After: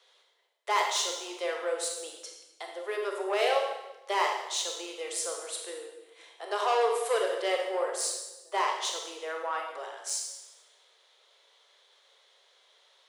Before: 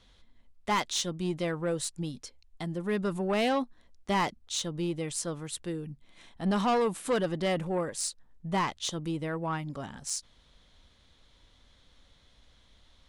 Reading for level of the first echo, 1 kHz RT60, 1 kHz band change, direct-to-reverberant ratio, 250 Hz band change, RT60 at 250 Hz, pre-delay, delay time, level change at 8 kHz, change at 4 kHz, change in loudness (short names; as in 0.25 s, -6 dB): none, 1.0 s, +2.5 dB, 1.0 dB, -15.0 dB, 1.2 s, 23 ms, none, +2.5 dB, +2.5 dB, +0.5 dB